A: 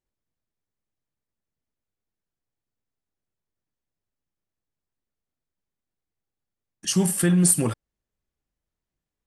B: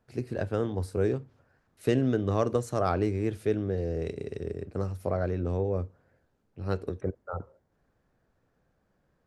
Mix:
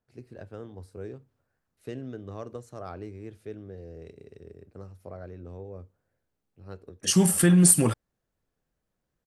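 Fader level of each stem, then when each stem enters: +1.0 dB, -12.5 dB; 0.20 s, 0.00 s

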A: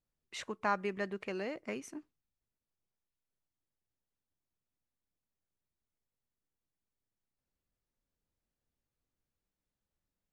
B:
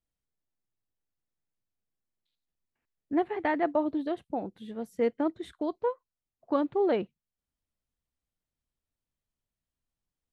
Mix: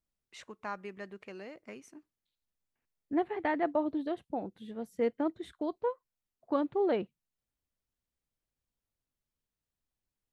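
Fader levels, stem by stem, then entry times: -7.0 dB, -3.0 dB; 0.00 s, 0.00 s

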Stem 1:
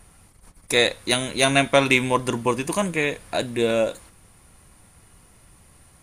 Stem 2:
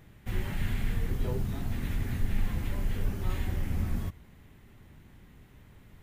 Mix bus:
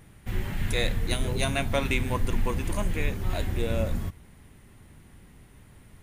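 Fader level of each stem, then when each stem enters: -10.5 dB, +2.0 dB; 0.00 s, 0.00 s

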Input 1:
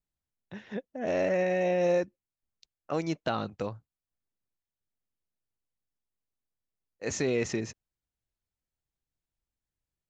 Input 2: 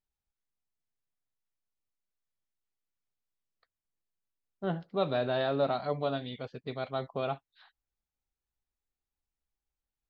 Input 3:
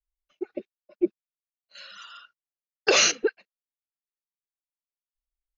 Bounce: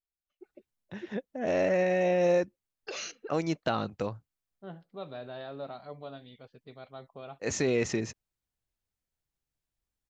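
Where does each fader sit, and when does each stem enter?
+1.0 dB, -11.5 dB, -19.5 dB; 0.40 s, 0.00 s, 0.00 s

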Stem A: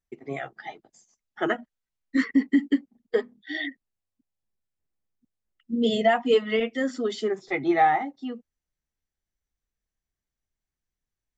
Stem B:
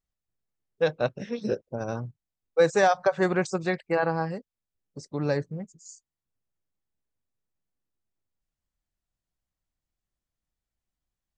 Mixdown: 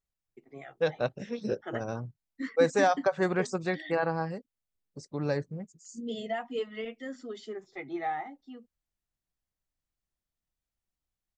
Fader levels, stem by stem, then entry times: -13.0 dB, -3.5 dB; 0.25 s, 0.00 s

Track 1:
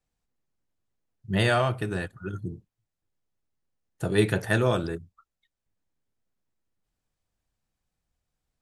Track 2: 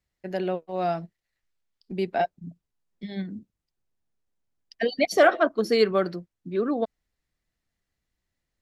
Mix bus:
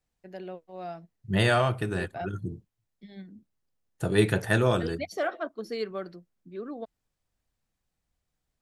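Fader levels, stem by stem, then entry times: 0.0 dB, -12.0 dB; 0.00 s, 0.00 s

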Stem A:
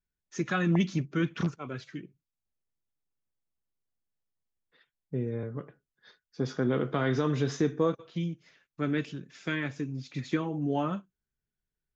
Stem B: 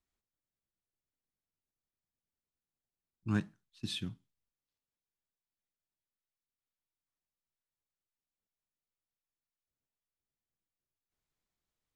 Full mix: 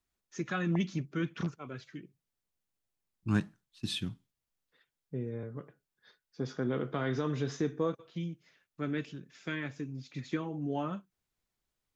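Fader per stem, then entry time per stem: -5.0 dB, +3.0 dB; 0.00 s, 0.00 s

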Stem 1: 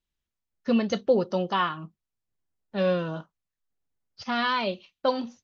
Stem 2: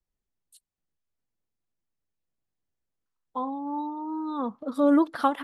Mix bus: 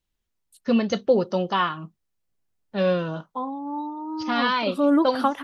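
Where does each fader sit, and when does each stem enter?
+2.5 dB, +1.0 dB; 0.00 s, 0.00 s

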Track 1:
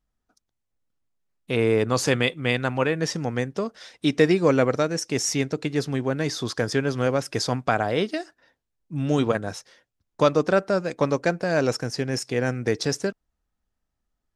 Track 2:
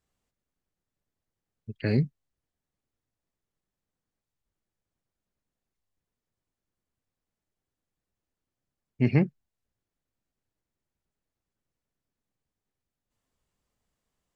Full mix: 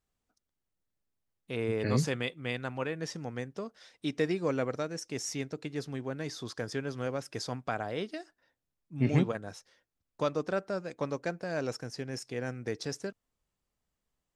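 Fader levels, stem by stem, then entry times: -11.5 dB, -4.5 dB; 0.00 s, 0.00 s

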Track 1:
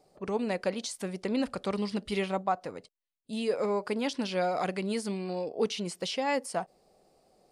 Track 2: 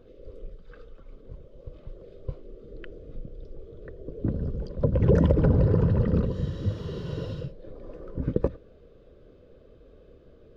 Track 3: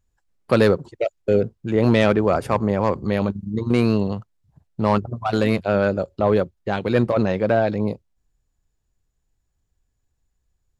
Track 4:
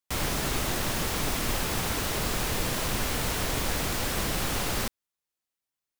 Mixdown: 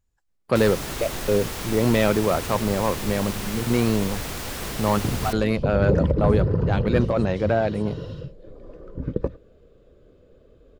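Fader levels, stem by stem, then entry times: -17.5 dB, -0.5 dB, -3.0 dB, -2.5 dB; 1.30 s, 0.80 s, 0.00 s, 0.45 s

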